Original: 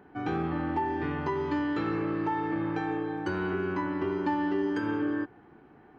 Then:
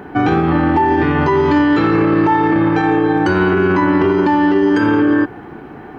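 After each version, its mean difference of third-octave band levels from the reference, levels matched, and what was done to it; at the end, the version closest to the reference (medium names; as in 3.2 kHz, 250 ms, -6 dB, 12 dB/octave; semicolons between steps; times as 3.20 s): 1.0 dB: loudness maximiser +26.5 dB; trim -5 dB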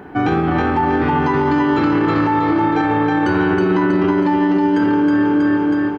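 3.5 dB: on a send: feedback delay 320 ms, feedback 50%, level -3 dB; on the sum: loudness maximiser +25.5 dB; trim -7.5 dB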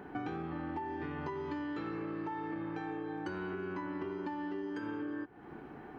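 2.0 dB: peaking EQ 100 Hz -5 dB 0.32 oct; compression 10:1, threshold -43 dBFS, peak gain reduction 19 dB; trim +6.5 dB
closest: first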